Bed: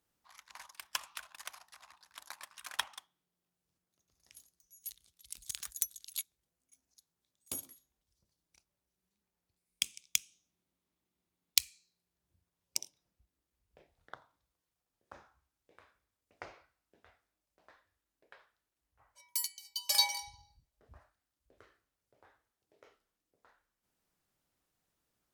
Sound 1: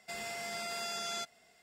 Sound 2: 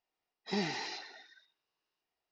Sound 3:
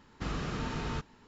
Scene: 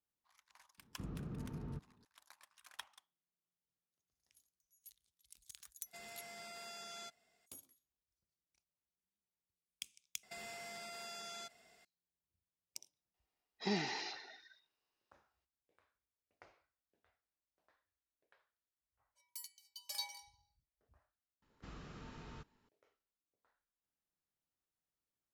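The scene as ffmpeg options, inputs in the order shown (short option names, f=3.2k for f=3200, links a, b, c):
-filter_complex "[3:a]asplit=2[a][b];[1:a]asplit=2[c][d];[0:a]volume=-14.5dB[e];[a]bandpass=f=140:t=q:w=0.68:csg=0[f];[d]acompressor=threshold=-43dB:ratio=6:attack=3.2:release=140:knee=1:detection=peak[g];[e]asplit=2[h][i];[h]atrim=end=10.234[j];[g]atrim=end=1.62,asetpts=PTS-STARTPTS,volume=-2.5dB[k];[i]atrim=start=11.846[l];[f]atrim=end=1.27,asetpts=PTS-STARTPTS,volume=-6.5dB,afade=t=in:d=0.004:c=hsin,afade=t=out:st=1.266:d=0.004:c=hsin,adelay=780[m];[c]atrim=end=1.62,asetpts=PTS-STARTPTS,volume=-12dB,afade=t=in:d=0.02,afade=t=out:st=1.6:d=0.02,adelay=257985S[n];[2:a]atrim=end=2.31,asetpts=PTS-STARTPTS,volume=-2.5dB,afade=t=in:d=0.004:c=hsin,afade=t=out:st=2.306:d=0.004:c=hsin,adelay=13140[o];[b]atrim=end=1.27,asetpts=PTS-STARTPTS,volume=-17dB,afade=t=in:d=0.004:c=hsin,afade=t=out:st=1.266:d=0.004:c=hsin,adelay=21420[p];[j][k]acrossfade=d=0.004:c1=hsin:c2=hsin[q];[q][l]acrossfade=d=0.004:c1=hsin:c2=hsin[r];[r][m][n][o][p]amix=inputs=5:normalize=0"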